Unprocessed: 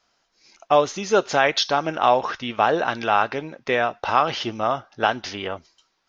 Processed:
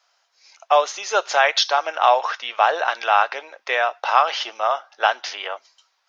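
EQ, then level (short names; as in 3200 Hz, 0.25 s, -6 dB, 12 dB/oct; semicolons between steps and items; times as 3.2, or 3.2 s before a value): HPF 600 Hz 24 dB/oct; +3.0 dB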